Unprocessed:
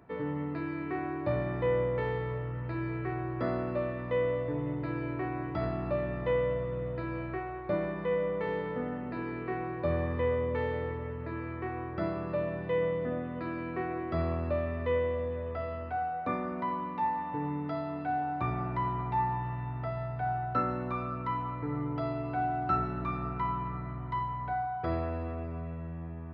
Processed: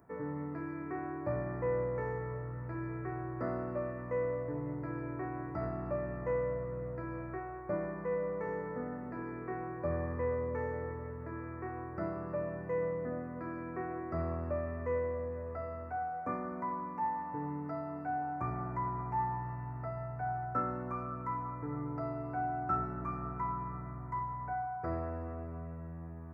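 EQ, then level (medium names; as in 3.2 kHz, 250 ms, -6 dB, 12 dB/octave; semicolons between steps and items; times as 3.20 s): Butterworth band-stop 3.5 kHz, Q 0.65; treble shelf 2.4 kHz +10 dB; -5.0 dB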